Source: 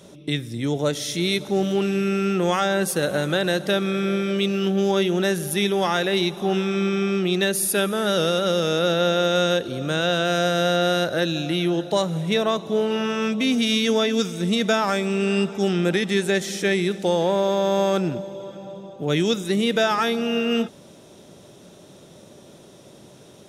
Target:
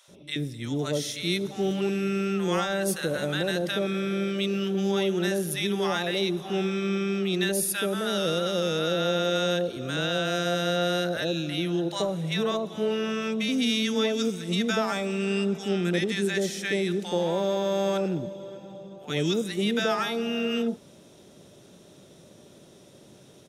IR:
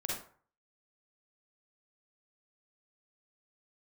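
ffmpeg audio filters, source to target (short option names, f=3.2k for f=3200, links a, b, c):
-filter_complex "[0:a]acrossover=split=850[a][b];[a]adelay=80[c];[c][b]amix=inputs=2:normalize=0,volume=-4.5dB"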